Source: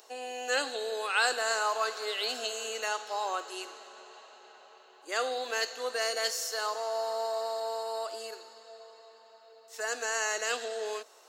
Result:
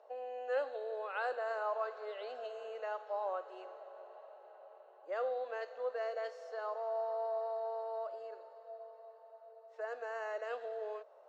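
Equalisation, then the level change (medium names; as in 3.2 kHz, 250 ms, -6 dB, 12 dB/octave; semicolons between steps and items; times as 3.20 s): dynamic bell 670 Hz, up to -6 dB, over -45 dBFS, Q 1.7; ladder band-pass 630 Hz, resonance 70%; +6.5 dB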